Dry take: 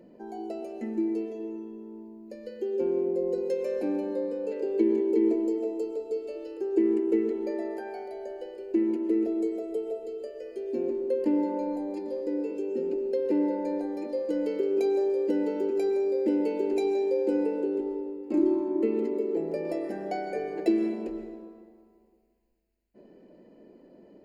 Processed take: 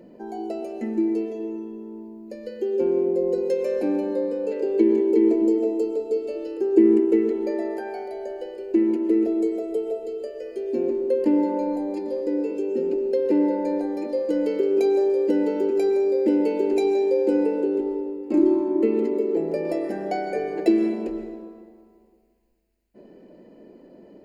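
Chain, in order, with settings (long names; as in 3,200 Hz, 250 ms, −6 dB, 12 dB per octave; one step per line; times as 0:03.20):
0:05.41–0:07.05: parametric band 200 Hz +6 dB 1.4 octaves
level +5.5 dB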